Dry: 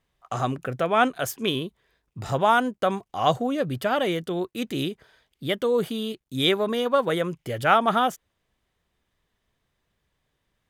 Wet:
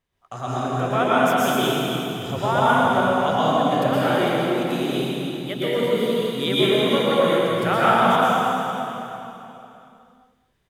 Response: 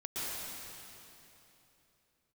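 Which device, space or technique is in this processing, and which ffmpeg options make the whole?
cave: -filter_complex "[0:a]aecho=1:1:210:0.282[a];[1:a]atrim=start_sample=2205[b];[a][b]afir=irnorm=-1:irlink=0"

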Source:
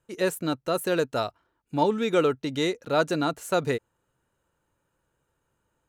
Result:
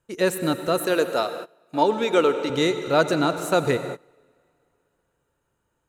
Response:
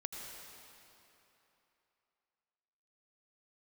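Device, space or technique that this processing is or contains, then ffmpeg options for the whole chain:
keyed gated reverb: -filter_complex "[0:a]asettb=1/sr,asplit=3[a][b][c];[a]atrim=end=0.844[d];[b]atrim=start=0.84:end=2.5,asetpts=PTS-STARTPTS,afade=t=in:d=0.004:c=qsin,afade=t=out:st=1.656:d=0.004:c=qsin,highpass=280[e];[c]atrim=start=2.496[f];[d][e]acrossfade=d=0.004:c1=hsin:c2=qsin[g];[g][f]acrossfade=d=0.004:c1=qsin:c2=hsin,asplit=3[h][i][j];[1:a]atrim=start_sample=2205[k];[i][k]afir=irnorm=-1:irlink=0[l];[j]apad=whole_len=259739[m];[l][m]sidechaingate=range=-22dB:threshold=-50dB:ratio=16:detection=peak,volume=-1.5dB[n];[h][n]amix=inputs=2:normalize=0"

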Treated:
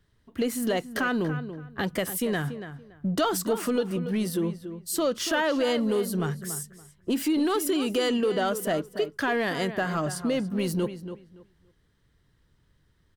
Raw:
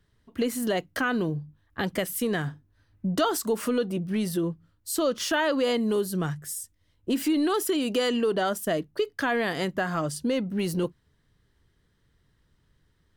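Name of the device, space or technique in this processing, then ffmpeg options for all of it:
parallel distortion: -filter_complex "[0:a]asettb=1/sr,asplit=3[a][b][c];[a]atrim=end=6.394[d];[b]atrim=start=6.39:end=7.1,asetpts=PTS-STARTPTS,afade=t=in:d=0.004:c=qsin,afade=t=out:st=0.706:d=0.004:c=qsin,equalizer=f=1.4k:t=o:w=2.2:g=6[e];[c]atrim=start=7.096[f];[d][e]acrossfade=d=0.004:c1=hsin:c2=qsin[g];[g][f]acrossfade=d=0.004:c1=qsin:c2=hsin,asplit=2[h][i];[i]adelay=284,lowpass=f=2.9k:p=1,volume=-11dB,asplit=2[j][k];[k]adelay=284,lowpass=f=2.9k:p=1,volume=0.21,asplit=2[l][m];[m]adelay=284,lowpass=f=2.9k:p=1,volume=0.21[n];[h][j][l][n]amix=inputs=4:normalize=0,asplit=2[o][p];[p]asoftclip=type=hard:threshold=-25.5dB,volume=-10dB[q];[o][q]amix=inputs=2:normalize=0,volume=-2dB"

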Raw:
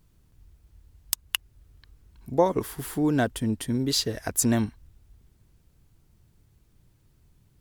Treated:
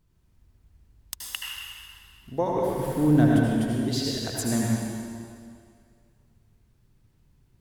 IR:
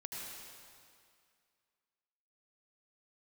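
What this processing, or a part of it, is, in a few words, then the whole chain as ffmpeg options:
swimming-pool hall: -filter_complex "[0:a]asettb=1/sr,asplit=3[a][b][c];[a]atrim=end=2.684[d];[b]atrim=start=2.68:end=3.37,asetpts=PTS-STARTPTS,afade=t=in:d=0.004:c=qsin,afade=t=out:st=0.686:d=0.004:c=qsin,lowshelf=f=410:g=9.5[e];[c]atrim=start=3.366[f];[d][e]acrossfade=d=0.004:c1=hsin:c2=qsin[g];[g][f]acrossfade=d=0.004:c1=qsin:c2=hsin[h];[1:a]atrim=start_sample=2205[i];[h][i]afir=irnorm=-1:irlink=0,highshelf=f=5.6k:g=-5"

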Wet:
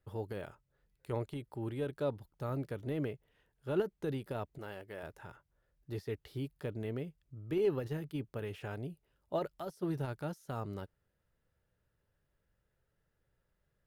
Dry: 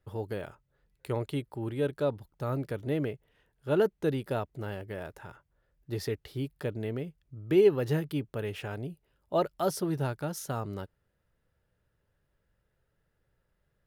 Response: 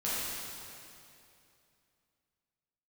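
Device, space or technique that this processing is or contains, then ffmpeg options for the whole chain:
de-esser from a sidechain: -filter_complex "[0:a]asplit=2[a][b];[b]highpass=6.9k,apad=whole_len=611402[c];[a][c]sidechaincompress=threshold=-58dB:ratio=12:attack=3.3:release=37,asettb=1/sr,asplit=3[d][e][f];[d]atrim=end=4.584[g];[e]atrim=start=4.58:end=5.03,asetpts=PTS-STARTPTS,afade=t=in:d=0.004:c=qsin,afade=t=out:st=0.446:d=0.004:c=qsin,lowshelf=f=220:g=-12[h];[f]atrim=start=5.026[i];[g][h]acrossfade=d=0.004:c1=hsin:c2=qsin[j];[j][i]acrossfade=d=0.004:c1=qsin:c2=hsin,volume=-4dB"

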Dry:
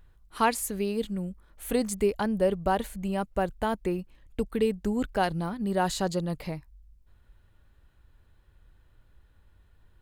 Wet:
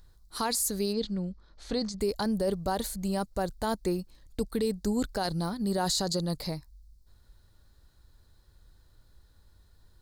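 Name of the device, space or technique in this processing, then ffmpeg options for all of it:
over-bright horn tweeter: -filter_complex "[0:a]highshelf=f=3.5k:t=q:w=3:g=7.5,alimiter=limit=-19.5dB:level=0:latency=1:release=11,asplit=3[a][b][c];[a]afade=t=out:st=0.92:d=0.02[d];[b]lowpass=f=5.2k:w=0.5412,lowpass=f=5.2k:w=1.3066,afade=t=in:st=0.92:d=0.02,afade=t=out:st=2:d=0.02[e];[c]afade=t=in:st=2:d=0.02[f];[d][e][f]amix=inputs=3:normalize=0"

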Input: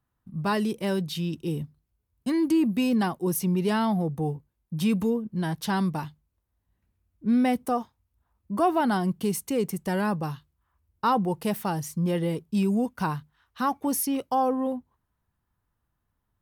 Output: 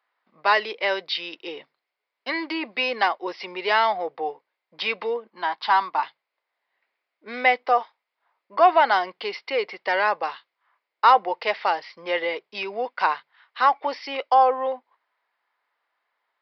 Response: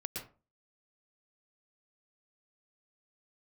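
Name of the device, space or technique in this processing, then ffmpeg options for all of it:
musical greeting card: -filter_complex "[0:a]asettb=1/sr,asplit=3[a][b][c];[a]atrim=end=5.304[d];[b]atrim=start=5.3:end=6.03,asetpts=PTS-STARTPTS,afade=t=in:d=0.004:c=qsin,afade=t=out:st=0.726:d=0.004:c=qsin,equalizer=f=125:t=o:w=1:g=-12,equalizer=f=250:t=o:w=1:g=7,equalizer=f=500:t=o:w=1:g=-12,equalizer=f=1k:t=o:w=1:g=9,equalizer=f=2k:t=o:w=1:g=-6,equalizer=f=8k:t=o:w=1:g=-12[e];[c]atrim=start=6.026[f];[d][e]acrossfade=d=0.004:c1=hsin:c2=qsin[g];[g][f]acrossfade=d=0.004:c1=qsin:c2=hsin,aresample=11025,aresample=44100,highpass=f=530:w=0.5412,highpass=f=530:w=1.3066,equalizer=f=2.1k:t=o:w=0.37:g=10,volume=8.5dB"

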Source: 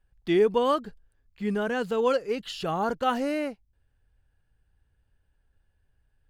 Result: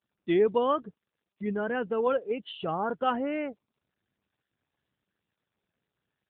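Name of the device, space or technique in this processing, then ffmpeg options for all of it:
mobile call with aggressive noise cancelling: -filter_complex "[0:a]asplit=3[a][b][c];[a]afade=t=out:st=0.53:d=0.02[d];[b]highpass=65,afade=t=in:st=0.53:d=0.02,afade=t=out:st=1.59:d=0.02[e];[c]afade=t=in:st=1.59:d=0.02[f];[d][e][f]amix=inputs=3:normalize=0,highpass=f=120:p=1,afftdn=nr=21:nf=-39,volume=-1dB" -ar 8000 -c:a libopencore_amrnb -b:a 10200

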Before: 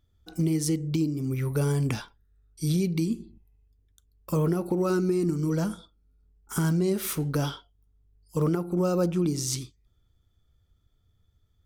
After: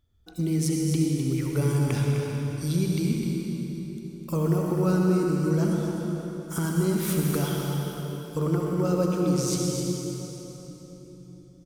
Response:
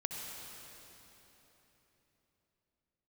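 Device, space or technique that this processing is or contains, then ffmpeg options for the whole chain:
cave: -filter_complex "[0:a]aecho=1:1:255:0.398[a];[1:a]atrim=start_sample=2205[b];[a][b]afir=irnorm=-1:irlink=0"

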